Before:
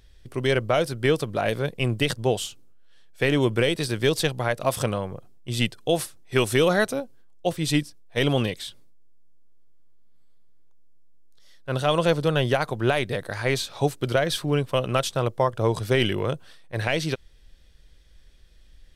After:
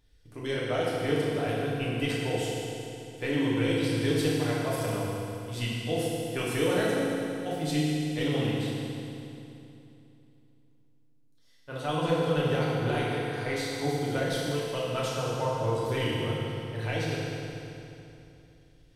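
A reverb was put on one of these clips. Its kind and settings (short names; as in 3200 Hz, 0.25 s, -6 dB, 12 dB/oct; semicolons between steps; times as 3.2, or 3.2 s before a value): FDN reverb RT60 2.9 s, low-frequency decay 1.2×, high-frequency decay 0.9×, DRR -7 dB; gain -13.5 dB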